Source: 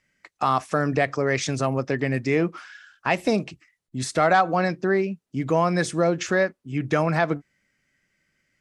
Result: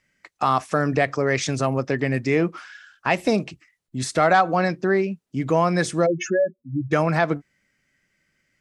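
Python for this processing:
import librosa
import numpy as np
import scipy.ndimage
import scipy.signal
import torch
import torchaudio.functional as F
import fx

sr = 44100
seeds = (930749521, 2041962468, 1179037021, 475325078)

y = fx.spec_expand(x, sr, power=3.6, at=(6.05, 6.91), fade=0.02)
y = F.gain(torch.from_numpy(y), 1.5).numpy()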